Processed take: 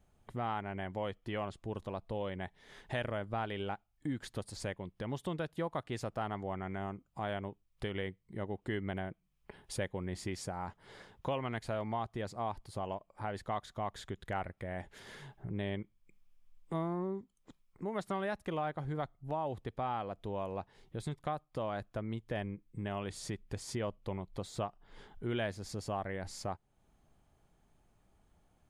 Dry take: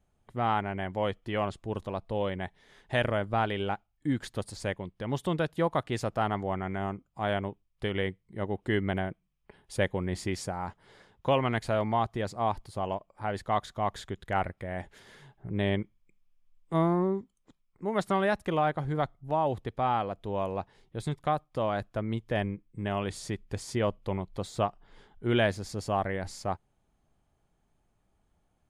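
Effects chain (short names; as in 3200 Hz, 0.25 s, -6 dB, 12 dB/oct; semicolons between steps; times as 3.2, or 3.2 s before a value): compressor 2:1, threshold -46 dBFS, peak gain reduction 14 dB; gain +3 dB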